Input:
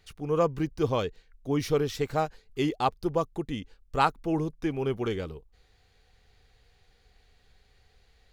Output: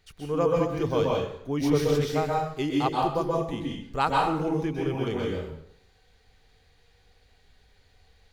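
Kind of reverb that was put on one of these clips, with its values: plate-style reverb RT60 0.69 s, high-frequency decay 0.85×, pre-delay 0.115 s, DRR -2.5 dB; gain -2 dB

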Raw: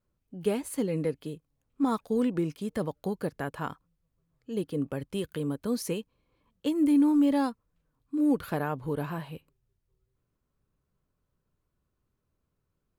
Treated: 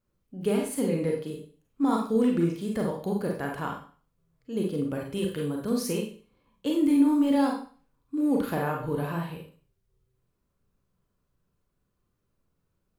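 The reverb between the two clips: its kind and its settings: Schroeder reverb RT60 0.42 s, combs from 32 ms, DRR 0 dB

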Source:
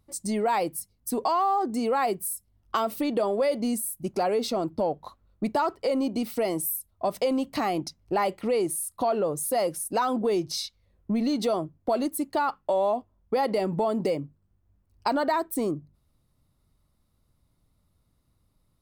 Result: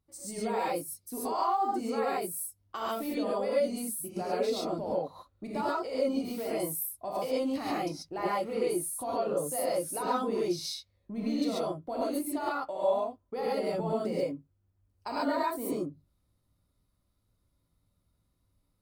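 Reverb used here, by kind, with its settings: non-linear reverb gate 0.16 s rising, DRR -7.5 dB; gain -13 dB

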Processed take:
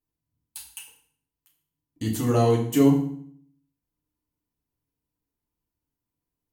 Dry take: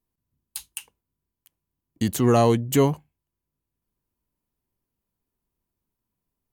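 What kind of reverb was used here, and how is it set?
FDN reverb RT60 0.58 s, low-frequency decay 1.35×, high-frequency decay 0.9×, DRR -2.5 dB; gain -8 dB

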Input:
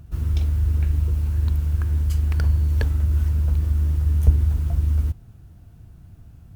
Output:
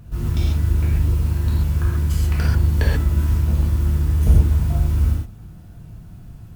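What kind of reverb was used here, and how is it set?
non-linear reverb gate 0.16 s flat, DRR -6 dB; gain +1 dB

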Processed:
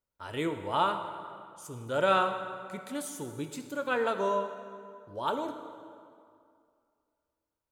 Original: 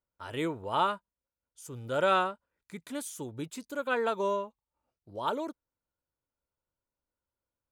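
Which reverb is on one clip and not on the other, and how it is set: plate-style reverb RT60 2.3 s, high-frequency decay 0.7×, DRR 6.5 dB

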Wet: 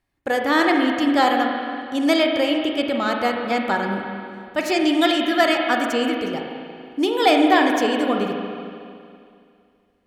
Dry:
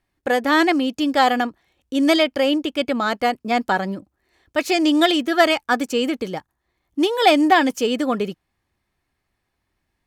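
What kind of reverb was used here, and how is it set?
spring tank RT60 2.4 s, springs 35/46 ms, chirp 40 ms, DRR 1.5 dB; gain -2.5 dB

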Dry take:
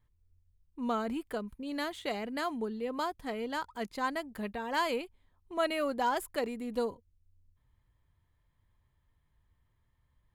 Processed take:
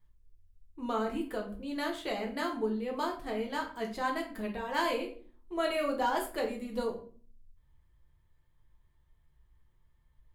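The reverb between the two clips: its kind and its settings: shoebox room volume 35 m³, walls mixed, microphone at 0.63 m; gain -2.5 dB

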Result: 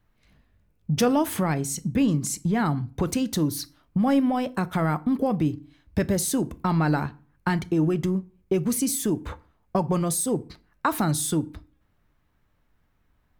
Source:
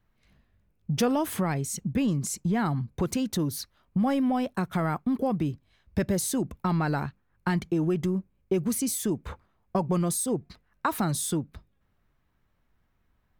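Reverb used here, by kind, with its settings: FDN reverb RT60 0.39 s, low-frequency decay 1.3×, high-frequency decay 0.75×, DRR 13.5 dB; gain +3 dB

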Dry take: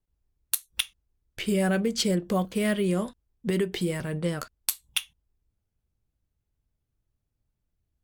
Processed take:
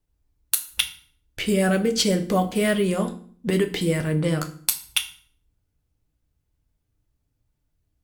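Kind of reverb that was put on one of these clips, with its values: FDN reverb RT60 0.49 s, low-frequency decay 1.4×, high-frequency decay 0.9×, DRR 6 dB; gain +4.5 dB

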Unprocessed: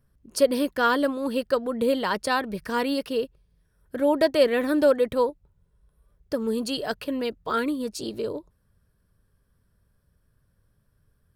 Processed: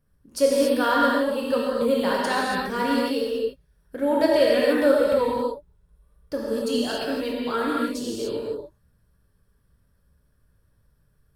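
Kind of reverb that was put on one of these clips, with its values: non-linear reverb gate 0.31 s flat, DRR -5 dB; gain -4 dB

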